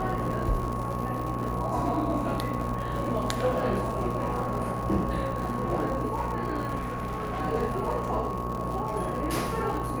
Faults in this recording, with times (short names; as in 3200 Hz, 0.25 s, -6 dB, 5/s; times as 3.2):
buzz 60 Hz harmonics 21 -35 dBFS
crackle 130/s -33 dBFS
tone 1100 Hz -34 dBFS
6.78–7.42 clipped -28 dBFS